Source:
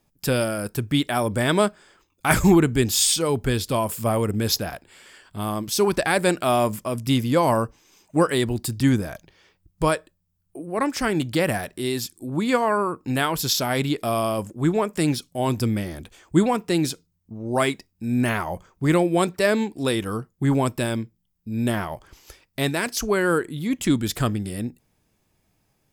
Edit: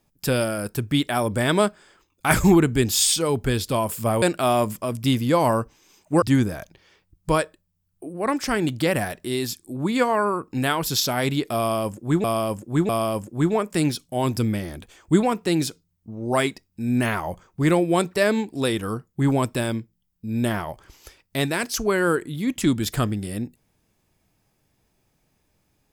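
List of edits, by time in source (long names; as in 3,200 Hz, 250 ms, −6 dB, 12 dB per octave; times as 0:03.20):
0:04.22–0:06.25: remove
0:08.25–0:08.75: remove
0:14.12–0:14.77: repeat, 3 plays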